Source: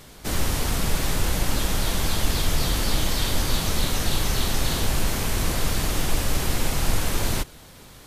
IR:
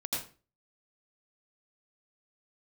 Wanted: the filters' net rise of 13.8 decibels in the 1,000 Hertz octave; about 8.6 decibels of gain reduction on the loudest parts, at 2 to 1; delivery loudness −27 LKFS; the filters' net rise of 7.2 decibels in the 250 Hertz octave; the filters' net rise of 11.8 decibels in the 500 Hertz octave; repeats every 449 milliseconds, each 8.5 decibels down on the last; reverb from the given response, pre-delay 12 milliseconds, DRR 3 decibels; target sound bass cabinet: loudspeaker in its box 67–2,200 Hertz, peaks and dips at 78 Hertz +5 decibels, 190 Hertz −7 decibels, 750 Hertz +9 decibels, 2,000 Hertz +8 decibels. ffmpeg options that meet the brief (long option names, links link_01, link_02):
-filter_complex "[0:a]equalizer=frequency=250:width_type=o:gain=8.5,equalizer=frequency=500:width_type=o:gain=8,equalizer=frequency=1000:width_type=o:gain=8.5,acompressor=threshold=-30dB:ratio=2,aecho=1:1:449|898|1347|1796:0.376|0.143|0.0543|0.0206,asplit=2[link_01][link_02];[1:a]atrim=start_sample=2205,adelay=12[link_03];[link_02][link_03]afir=irnorm=-1:irlink=0,volume=-7dB[link_04];[link_01][link_04]amix=inputs=2:normalize=0,highpass=frequency=67:width=0.5412,highpass=frequency=67:width=1.3066,equalizer=frequency=78:width_type=q:width=4:gain=5,equalizer=frequency=190:width_type=q:width=4:gain=-7,equalizer=frequency=750:width_type=q:width=4:gain=9,equalizer=frequency=2000:width_type=q:width=4:gain=8,lowpass=frequency=2200:width=0.5412,lowpass=frequency=2200:width=1.3066,volume=-1dB"